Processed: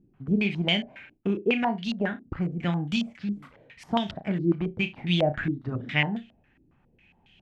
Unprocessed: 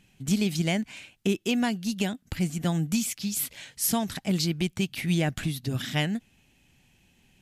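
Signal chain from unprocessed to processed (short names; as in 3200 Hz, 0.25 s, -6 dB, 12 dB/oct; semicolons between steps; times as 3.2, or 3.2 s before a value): flutter echo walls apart 5.9 m, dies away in 0.22 s; stepped low-pass 7.3 Hz 340–3200 Hz; gain -2 dB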